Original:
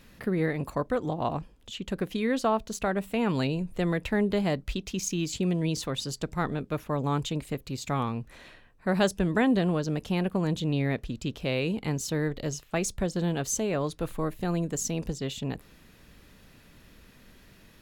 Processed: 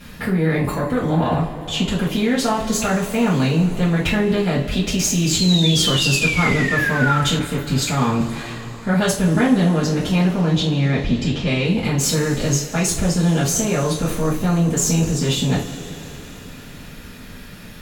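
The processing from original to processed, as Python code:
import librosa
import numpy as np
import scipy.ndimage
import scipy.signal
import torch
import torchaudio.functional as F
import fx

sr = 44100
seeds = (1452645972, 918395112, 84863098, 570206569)

p1 = fx.lowpass(x, sr, hz=6300.0, slope=24, at=(10.37, 11.64))
p2 = fx.over_compress(p1, sr, threshold_db=-33.0, ratio=-0.5)
p3 = p1 + (p2 * librosa.db_to_amplitude(2.0))
p4 = fx.cheby_harmonics(p3, sr, harmonics=(7, 8), levels_db=(-43, -29), full_scale_db=-7.0)
p5 = fx.spec_paint(p4, sr, seeds[0], shape='fall', start_s=5.35, length_s=1.86, low_hz=1300.0, high_hz=4300.0, level_db=-28.0)
p6 = fx.rev_double_slope(p5, sr, seeds[1], early_s=0.33, late_s=4.4, knee_db=-20, drr_db=-9.0)
p7 = fx.band_widen(p6, sr, depth_pct=40, at=(7.39, 8.21))
y = p7 * librosa.db_to_amplitude(-3.5)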